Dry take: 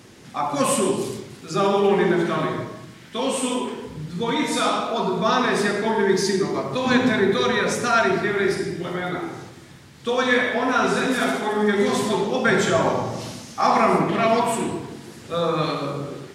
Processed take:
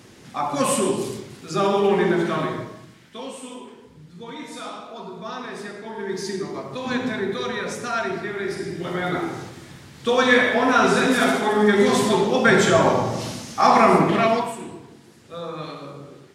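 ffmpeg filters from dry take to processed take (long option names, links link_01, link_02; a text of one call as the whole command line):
ffmpeg -i in.wav -af "volume=15.5dB,afade=type=out:start_time=2.35:duration=1.02:silence=0.237137,afade=type=in:start_time=5.89:duration=0.45:silence=0.473151,afade=type=in:start_time=8.48:duration=0.69:silence=0.334965,afade=type=out:start_time=14.13:duration=0.41:silence=0.223872" out.wav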